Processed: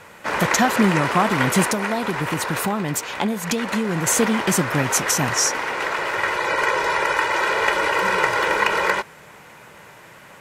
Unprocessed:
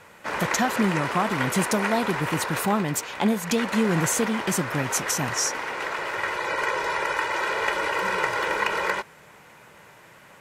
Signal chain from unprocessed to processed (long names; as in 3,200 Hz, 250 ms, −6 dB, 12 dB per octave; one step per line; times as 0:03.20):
0:01.68–0:04.07: downward compressor, threshold −25 dBFS, peak gain reduction 7.5 dB
level +5.5 dB